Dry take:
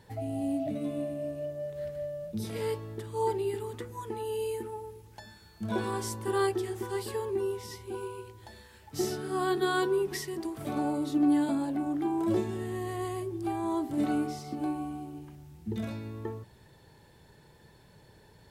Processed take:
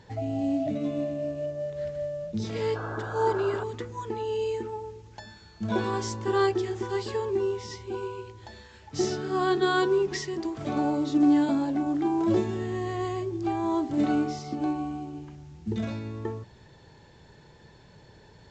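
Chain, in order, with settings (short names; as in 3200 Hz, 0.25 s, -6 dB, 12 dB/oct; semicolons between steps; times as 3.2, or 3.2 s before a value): painted sound noise, 2.75–3.64, 290–1700 Hz -41 dBFS; gain +4 dB; µ-law 128 kbps 16000 Hz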